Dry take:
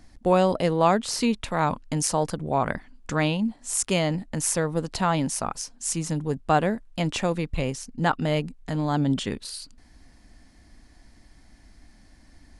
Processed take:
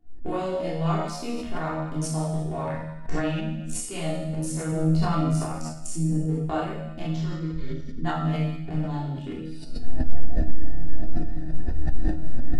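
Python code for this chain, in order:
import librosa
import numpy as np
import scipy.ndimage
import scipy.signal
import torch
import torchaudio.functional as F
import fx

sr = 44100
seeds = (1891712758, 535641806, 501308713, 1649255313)

y = fx.wiener(x, sr, points=41)
y = fx.recorder_agc(y, sr, target_db=-16.0, rise_db_per_s=65.0, max_gain_db=30)
y = fx.fixed_phaser(y, sr, hz=2700.0, stages=6, at=(7.05, 8.05))
y = fx.low_shelf(y, sr, hz=160.0, db=-3.0)
y = fx.hum_notches(y, sr, base_hz=50, count=3)
y = fx.comb_fb(y, sr, f0_hz=79.0, decay_s=1.1, harmonics='all', damping=0.0, mix_pct=90)
y = fx.room_shoebox(y, sr, seeds[0], volume_m3=600.0, walls='furnished', distance_m=3.3)
y = fx.chorus_voices(y, sr, voices=4, hz=0.37, base_ms=28, depth_ms=4.3, mix_pct=45)
y = fx.low_shelf(y, sr, hz=320.0, db=7.0, at=(4.72, 6.26))
y = fx.sustainer(y, sr, db_per_s=73.0)
y = y * librosa.db_to_amplitude(4.5)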